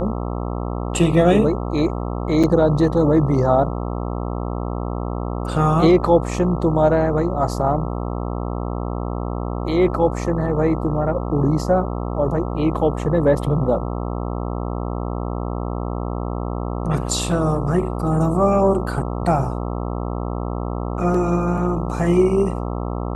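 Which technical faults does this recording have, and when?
buzz 60 Hz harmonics 22 -25 dBFS
2.43–2.44 s: dropout 6.3 ms

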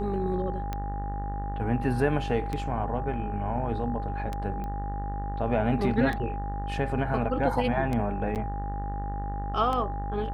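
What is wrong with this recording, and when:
buzz 50 Hz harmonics 38 -33 dBFS
tick 33 1/3 rpm -18 dBFS
whine 810 Hz -35 dBFS
4.64 s: pop -25 dBFS
8.35–8.36 s: dropout 8.6 ms

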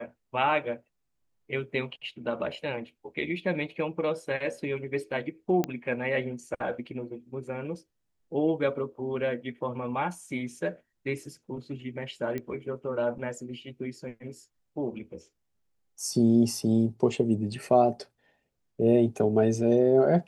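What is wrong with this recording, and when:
5.64 s: pop -14 dBFS
12.38 s: pop -21 dBFS

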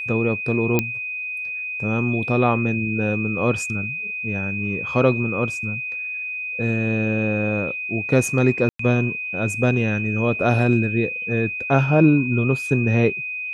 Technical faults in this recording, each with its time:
whine 2.5 kHz -26 dBFS
0.79 s: pop -5 dBFS
8.69–8.79 s: dropout 104 ms

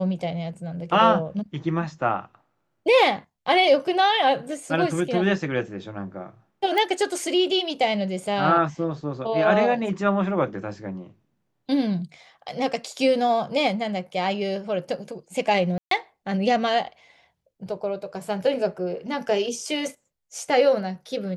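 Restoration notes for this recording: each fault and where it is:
6.78 s: pop -13 dBFS
15.78–15.91 s: dropout 133 ms

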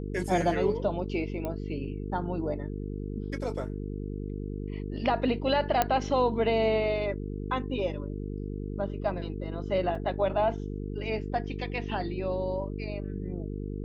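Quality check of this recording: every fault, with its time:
buzz 50 Hz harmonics 9 -35 dBFS
1.45 s: pop -21 dBFS
5.82 s: pop -9 dBFS
9.95 s: dropout 3.2 ms

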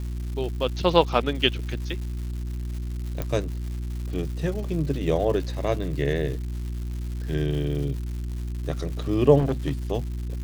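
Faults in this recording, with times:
crackle 320 per s -35 dBFS
hum 60 Hz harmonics 6 -30 dBFS
3.22 s: pop -14 dBFS
9.38–9.72 s: clipped -19 dBFS

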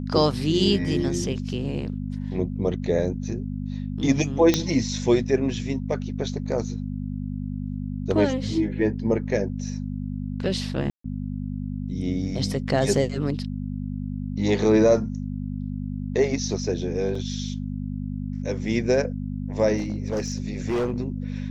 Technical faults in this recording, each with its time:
hum 50 Hz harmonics 5 -30 dBFS
4.54 s: pop -5 dBFS
10.90–11.04 s: dropout 144 ms
17.15 s: dropout 3.9 ms
19.77–20.98 s: clipped -21 dBFS

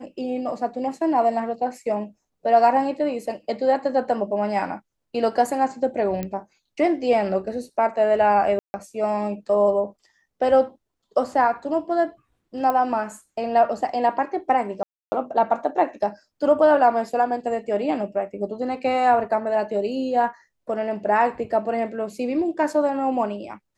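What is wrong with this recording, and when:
6.23 s: pop -15 dBFS
8.59–8.74 s: dropout 150 ms
12.70 s: pop -12 dBFS
14.83–15.12 s: dropout 290 ms

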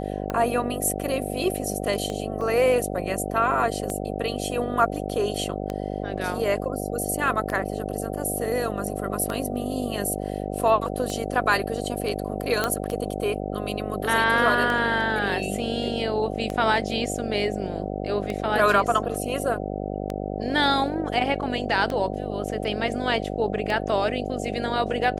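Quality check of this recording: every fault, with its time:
buzz 50 Hz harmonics 15 -30 dBFS
tick 33 1/3 rpm -15 dBFS
2.41 s: dropout 2.4 ms
12.64 s: pop -8 dBFS

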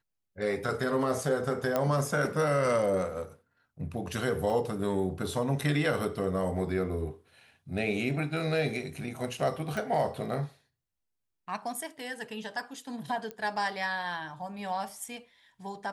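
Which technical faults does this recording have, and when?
1.76 s: pop -14 dBFS
4.50 s: dropout 2.2 ms
9.77 s: pop
13.31 s: pop -24 dBFS

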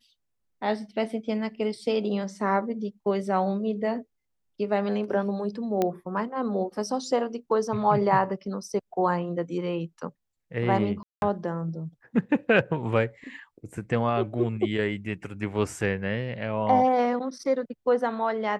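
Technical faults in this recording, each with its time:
5.82 s: pop -12 dBFS
11.03–11.22 s: dropout 191 ms

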